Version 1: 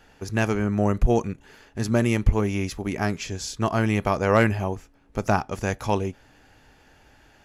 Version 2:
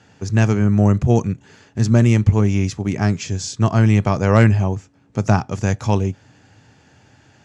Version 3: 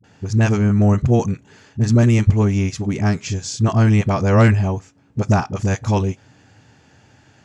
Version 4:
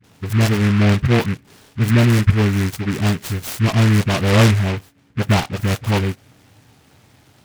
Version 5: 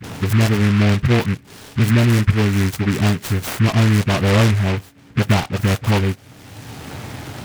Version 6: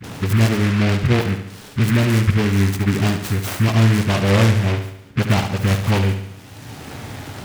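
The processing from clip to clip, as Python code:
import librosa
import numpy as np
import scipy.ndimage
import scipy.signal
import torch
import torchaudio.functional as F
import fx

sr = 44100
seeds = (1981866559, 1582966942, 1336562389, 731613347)

y1 = scipy.signal.sosfilt(scipy.signal.ellip(3, 1.0, 50, [100.0, 7600.0], 'bandpass', fs=sr, output='sos'), x)
y1 = fx.bass_treble(y1, sr, bass_db=11, treble_db=5)
y1 = y1 * 10.0 ** (1.5 / 20.0)
y2 = fx.dispersion(y1, sr, late='highs', ms=41.0, hz=440.0)
y3 = fx.noise_mod_delay(y2, sr, seeds[0], noise_hz=1700.0, depth_ms=0.16)
y4 = fx.band_squash(y3, sr, depth_pct=70)
y5 = fx.echo_feedback(y4, sr, ms=71, feedback_pct=53, wet_db=-8.5)
y5 = y5 * 10.0 ** (-1.5 / 20.0)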